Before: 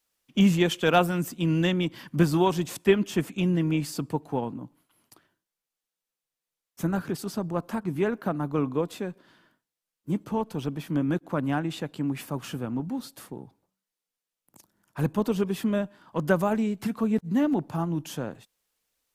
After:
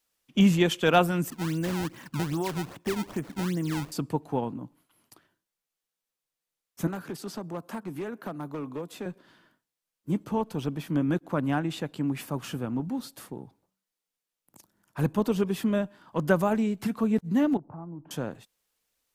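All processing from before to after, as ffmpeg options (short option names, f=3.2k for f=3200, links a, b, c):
-filter_complex "[0:a]asettb=1/sr,asplit=3[a][b][c];[a]atrim=end=1.304[d];[b]atrim=start=1.3:end=3.92,asetpts=PTS-STARTPTS,afade=t=in:d=0.004:c=qsin,afade=t=out:st=2.616:d=0.004:c=qsin,lowpass=2.5k,acompressor=threshold=-26dB:ratio=4:attack=3.2:release=140:knee=1:detection=peak,acrusher=samples=22:mix=1:aa=0.000001:lfo=1:lforange=35.2:lforate=2.5[e];[c]atrim=start=3.916[f];[d][e]acrossfade=d=0.004:c1=hsin:c2=qsin[g];[g][f]acrossfade=d=0.004:c1=qsin:c2=hsin,asettb=1/sr,asplit=3[h][i][j];[h]atrim=end=6.874[k];[i]atrim=start=6.87:end=9.06,asetpts=PTS-STARTPTS,afade=t=in:d=0.004:c=qsin,afade=t=out:st=2.186:d=0.004:c=qsin,highpass=f=92:w=0.5412,highpass=f=92:w=1.3066,acrossover=split=250|7200[l][m][n];[l]acompressor=threshold=-42dB:ratio=4[o];[m]acompressor=threshold=-34dB:ratio=4[p];[n]acompressor=threshold=-50dB:ratio=4[q];[o][p][q]amix=inputs=3:normalize=0,asoftclip=type=hard:threshold=-29dB[r];[j]atrim=start=9.056[s];[k][r]acrossfade=d=0.004:c1=hsin:c2=qsin[t];[t][s]acrossfade=d=0.004:c1=qsin:c2=hsin,asettb=1/sr,asplit=3[u][v][w];[u]atrim=end=17.574[x];[v]atrim=start=17.57:end=18.11,asetpts=PTS-STARTPTS,afade=t=in:d=0.004:c=qsin,afade=t=out:st=0.536:d=0.004:c=qsin,lowpass=f=1.2k:w=0.5412,lowpass=f=1.2k:w=1.3066,acompressor=threshold=-43dB:ratio=2.5:attack=3.2:release=140:knee=1:detection=peak[y];[w]atrim=start=18.106[z];[x][y]acrossfade=d=0.004:c1=hsin:c2=qsin[aa];[aa][z]acrossfade=d=0.004:c1=qsin:c2=hsin"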